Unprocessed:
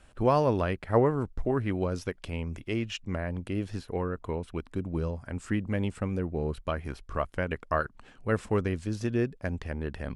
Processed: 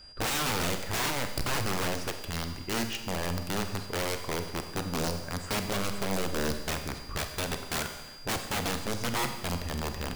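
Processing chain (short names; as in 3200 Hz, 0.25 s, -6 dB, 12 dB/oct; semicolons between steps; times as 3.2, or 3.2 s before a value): whine 4800 Hz -50 dBFS; wrapped overs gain 25 dB; Schroeder reverb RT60 1.2 s, combs from 31 ms, DRR 6.5 dB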